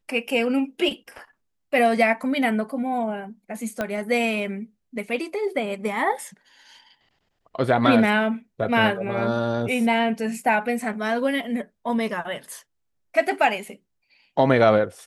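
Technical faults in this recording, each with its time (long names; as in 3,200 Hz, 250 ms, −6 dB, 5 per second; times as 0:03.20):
0:03.81: click −12 dBFS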